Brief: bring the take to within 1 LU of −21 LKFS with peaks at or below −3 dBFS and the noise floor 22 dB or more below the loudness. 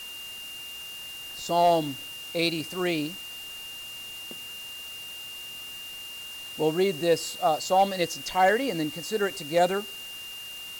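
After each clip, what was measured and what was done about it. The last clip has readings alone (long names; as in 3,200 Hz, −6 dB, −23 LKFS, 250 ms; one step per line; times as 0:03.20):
interfering tone 2,800 Hz; level of the tone −38 dBFS; background noise floor −40 dBFS; target noise floor −51 dBFS; integrated loudness −28.5 LKFS; sample peak −12.0 dBFS; target loudness −21.0 LKFS
→ notch filter 2,800 Hz, Q 30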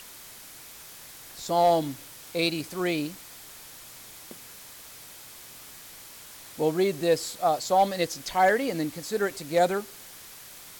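interfering tone none found; background noise floor −46 dBFS; target noise floor −48 dBFS
→ broadband denoise 6 dB, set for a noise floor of −46 dBFS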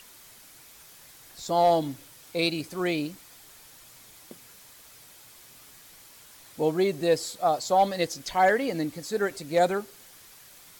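background noise floor −52 dBFS; integrated loudness −26.0 LKFS; sample peak −12.5 dBFS; target loudness −21.0 LKFS
→ level +5 dB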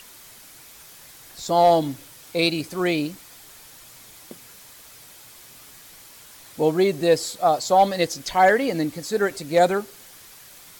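integrated loudness −21.0 LKFS; sample peak −7.5 dBFS; background noise floor −47 dBFS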